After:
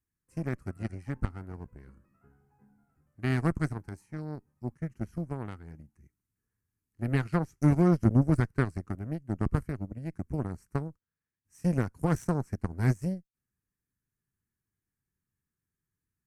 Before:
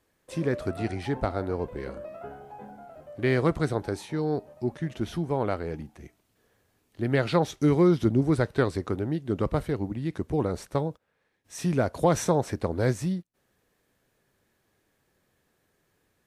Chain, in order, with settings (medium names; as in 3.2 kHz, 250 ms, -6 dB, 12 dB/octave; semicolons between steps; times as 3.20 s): tone controls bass +11 dB, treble +7 dB; static phaser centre 1.5 kHz, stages 4; Chebyshev shaper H 3 -15 dB, 4 -29 dB, 5 -40 dB, 7 -25 dB, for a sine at -6.5 dBFS; trim -3 dB